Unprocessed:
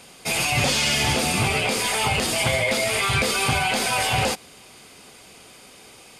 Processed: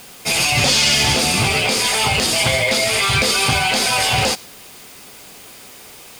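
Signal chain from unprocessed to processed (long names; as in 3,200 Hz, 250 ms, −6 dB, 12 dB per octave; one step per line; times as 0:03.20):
in parallel at −6.5 dB: bit-depth reduction 6 bits, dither triangular
on the sum: dynamic equaliser 4,900 Hz, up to +6 dB, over −33 dBFS, Q 1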